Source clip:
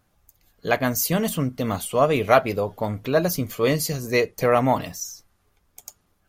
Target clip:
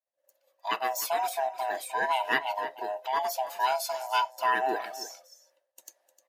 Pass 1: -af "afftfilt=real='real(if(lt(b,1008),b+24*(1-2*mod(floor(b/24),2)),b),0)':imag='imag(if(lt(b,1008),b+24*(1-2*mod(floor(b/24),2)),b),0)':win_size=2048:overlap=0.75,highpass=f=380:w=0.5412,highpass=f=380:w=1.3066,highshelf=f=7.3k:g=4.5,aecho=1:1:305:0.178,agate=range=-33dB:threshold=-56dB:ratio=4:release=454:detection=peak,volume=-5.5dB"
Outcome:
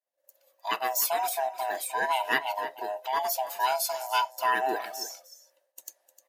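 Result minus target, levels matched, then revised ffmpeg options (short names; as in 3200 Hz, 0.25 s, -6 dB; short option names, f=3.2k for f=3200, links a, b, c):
8000 Hz band +4.0 dB
-af "afftfilt=real='real(if(lt(b,1008),b+24*(1-2*mod(floor(b/24),2)),b),0)':imag='imag(if(lt(b,1008),b+24*(1-2*mod(floor(b/24),2)),b),0)':win_size=2048:overlap=0.75,highpass=f=380:w=0.5412,highpass=f=380:w=1.3066,highshelf=f=7.3k:g=-5,aecho=1:1:305:0.178,agate=range=-33dB:threshold=-56dB:ratio=4:release=454:detection=peak,volume=-5.5dB"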